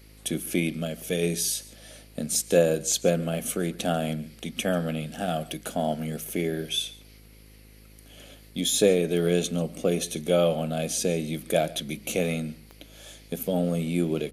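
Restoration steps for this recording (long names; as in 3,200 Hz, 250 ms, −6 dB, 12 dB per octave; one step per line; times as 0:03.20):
click removal
hum removal 52.8 Hz, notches 10
echo removal 140 ms −20.5 dB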